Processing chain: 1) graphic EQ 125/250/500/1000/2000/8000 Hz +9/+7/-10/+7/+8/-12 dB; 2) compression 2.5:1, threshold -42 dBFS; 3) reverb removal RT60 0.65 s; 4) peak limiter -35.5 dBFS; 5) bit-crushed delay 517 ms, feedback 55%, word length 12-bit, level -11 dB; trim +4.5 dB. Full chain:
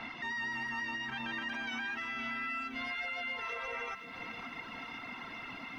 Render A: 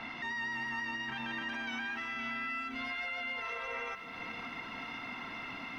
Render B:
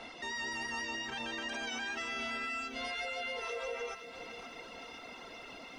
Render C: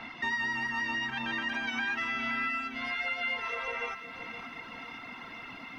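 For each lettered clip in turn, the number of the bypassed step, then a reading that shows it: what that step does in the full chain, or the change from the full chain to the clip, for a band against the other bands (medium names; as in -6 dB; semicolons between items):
3, momentary loudness spread change -2 LU; 1, momentary loudness spread change +3 LU; 4, mean gain reduction 3.0 dB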